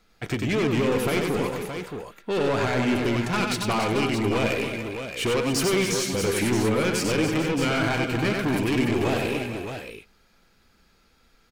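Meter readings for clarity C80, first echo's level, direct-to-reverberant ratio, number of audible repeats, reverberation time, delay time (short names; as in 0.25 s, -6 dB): none, -4.0 dB, none, 5, none, 94 ms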